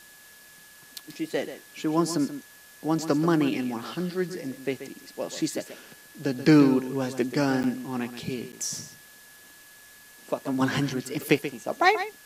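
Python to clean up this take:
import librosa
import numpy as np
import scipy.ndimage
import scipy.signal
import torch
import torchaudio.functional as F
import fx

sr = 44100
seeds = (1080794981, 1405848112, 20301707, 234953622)

y = fx.notch(x, sr, hz=1700.0, q=30.0)
y = fx.fix_interpolate(y, sr, at_s=(7.63, 8.52), length_ms=9.7)
y = fx.noise_reduce(y, sr, print_start_s=0.01, print_end_s=0.51, reduce_db=21.0)
y = fx.fix_echo_inverse(y, sr, delay_ms=133, level_db=-11.5)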